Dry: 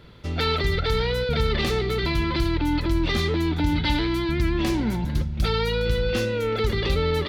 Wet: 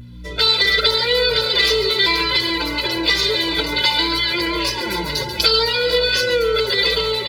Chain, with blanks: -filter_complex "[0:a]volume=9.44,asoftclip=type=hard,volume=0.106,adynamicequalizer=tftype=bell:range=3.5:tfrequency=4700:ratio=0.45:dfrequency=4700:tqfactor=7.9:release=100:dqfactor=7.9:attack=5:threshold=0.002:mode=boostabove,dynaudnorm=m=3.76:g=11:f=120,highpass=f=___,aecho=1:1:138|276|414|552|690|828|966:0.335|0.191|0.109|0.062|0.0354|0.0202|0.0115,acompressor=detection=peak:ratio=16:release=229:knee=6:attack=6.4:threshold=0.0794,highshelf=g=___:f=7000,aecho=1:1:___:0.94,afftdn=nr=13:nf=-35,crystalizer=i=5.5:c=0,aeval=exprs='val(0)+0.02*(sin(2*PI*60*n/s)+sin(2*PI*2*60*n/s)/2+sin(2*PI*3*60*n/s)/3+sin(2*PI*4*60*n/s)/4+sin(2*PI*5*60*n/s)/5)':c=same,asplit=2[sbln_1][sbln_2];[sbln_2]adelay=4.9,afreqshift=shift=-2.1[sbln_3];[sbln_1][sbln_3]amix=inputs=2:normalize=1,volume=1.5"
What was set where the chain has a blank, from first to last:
350, -3, 2